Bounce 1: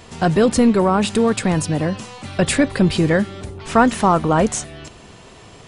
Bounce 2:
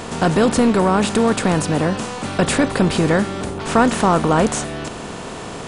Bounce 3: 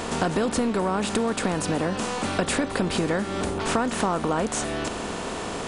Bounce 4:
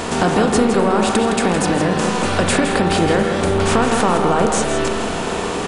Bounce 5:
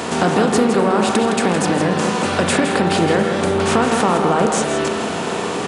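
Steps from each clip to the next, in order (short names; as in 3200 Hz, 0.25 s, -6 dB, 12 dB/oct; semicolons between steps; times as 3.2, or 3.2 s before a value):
per-bin compression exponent 0.6; gain -3 dB
bell 130 Hz -9 dB 0.54 oct; compressor, threshold -21 dBFS, peak gain reduction 11 dB
outdoor echo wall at 28 m, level -6 dB; reverb RT60 1.9 s, pre-delay 33 ms, DRR 4 dB; gain +6.5 dB
HPF 100 Hz 24 dB/oct; Doppler distortion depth 0.1 ms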